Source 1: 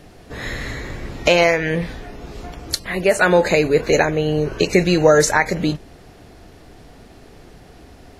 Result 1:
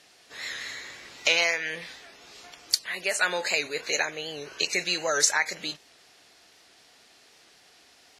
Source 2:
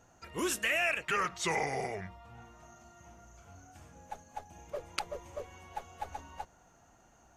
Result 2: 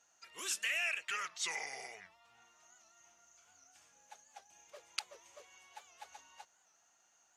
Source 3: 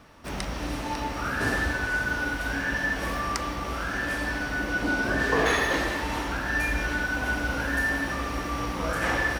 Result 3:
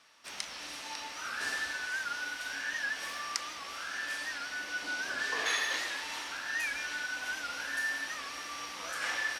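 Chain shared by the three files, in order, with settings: band-pass 5200 Hz, Q 0.69; record warp 78 rpm, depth 100 cents

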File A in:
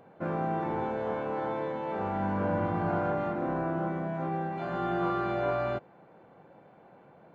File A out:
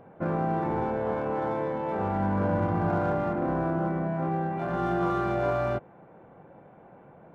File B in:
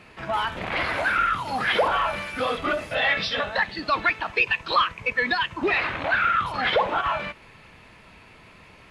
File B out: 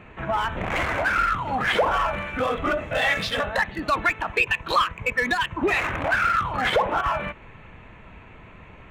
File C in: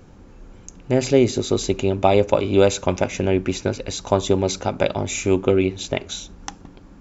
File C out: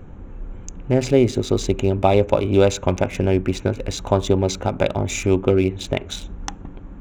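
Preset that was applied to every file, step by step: Wiener smoothing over 9 samples; low shelf 88 Hz +9 dB; in parallel at -2 dB: compressor, threshold -28 dBFS; on the sum: gain -1.5 dB

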